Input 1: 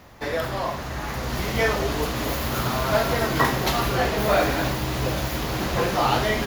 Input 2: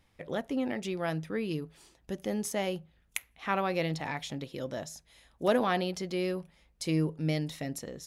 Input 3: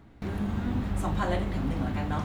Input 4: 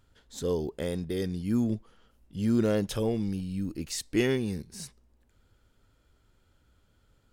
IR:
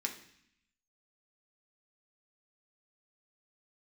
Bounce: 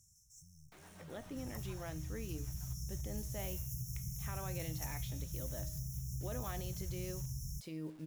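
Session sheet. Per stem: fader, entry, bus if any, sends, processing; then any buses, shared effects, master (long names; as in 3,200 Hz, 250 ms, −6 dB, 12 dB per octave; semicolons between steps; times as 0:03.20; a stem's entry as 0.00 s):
+1.0 dB, 1.15 s, bus B, no send, no processing
−3.0 dB, 0.80 s, bus A, no send, de-essing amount 80%
0:01.36 −4.5 dB → 0:02.03 −16.5 dB, 0.50 s, bus A, no send, high-pass filter 640 Hz 12 dB per octave; rotating-speaker cabinet horn 7.5 Hz
−7.0 dB, 0.00 s, bus B, no send, high shelf with overshoot 3,000 Hz +11 dB, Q 1.5; downward compressor, threshold −31 dBFS, peak gain reduction 12 dB; mid-hump overdrive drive 38 dB, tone 2,300 Hz, clips at −26.5 dBFS
bus A: 0.0 dB, bit reduction 9 bits; brickwall limiter −26.5 dBFS, peak gain reduction 11 dB
bus B: 0.0 dB, linear-phase brick-wall band-stop 180–5,300 Hz; downward compressor 3 to 1, threshold −29 dBFS, peak gain reduction 5.5 dB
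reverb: not used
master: tuned comb filter 310 Hz, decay 0.63 s, mix 70%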